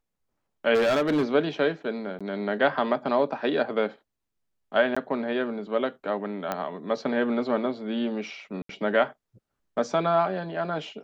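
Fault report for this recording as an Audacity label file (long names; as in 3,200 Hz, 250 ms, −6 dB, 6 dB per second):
0.740000	1.240000	clipping −19.5 dBFS
2.190000	2.210000	drop-out 16 ms
4.950000	4.960000	drop-out 15 ms
6.520000	6.520000	click −14 dBFS
8.620000	8.690000	drop-out 73 ms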